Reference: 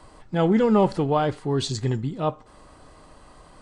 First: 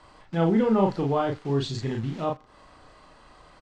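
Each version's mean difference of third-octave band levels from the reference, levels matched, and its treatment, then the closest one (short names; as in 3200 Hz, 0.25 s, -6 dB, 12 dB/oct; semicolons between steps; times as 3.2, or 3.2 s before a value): 3.0 dB: in parallel at -6 dB: bit-crush 6-bit; on the sum: air absorption 110 m; doubler 36 ms -2.5 dB; mismatched tape noise reduction encoder only; gain -8 dB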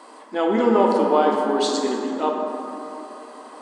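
9.5 dB: bell 1000 Hz +4 dB 0.49 oct; in parallel at +1 dB: compressor, threshold -29 dBFS, peak gain reduction 14.5 dB; on the sum: brick-wall FIR high-pass 210 Hz; plate-style reverb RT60 3.3 s, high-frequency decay 0.4×, DRR -0.5 dB; gain -2 dB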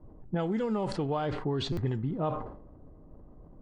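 6.0 dB: low-pass opened by the level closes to 320 Hz, open at -15.5 dBFS; compressor 10:1, threshold -27 dBFS, peak gain reduction 14 dB; stuck buffer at 1.72, samples 256, times 8; sustainer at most 66 dB/s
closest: first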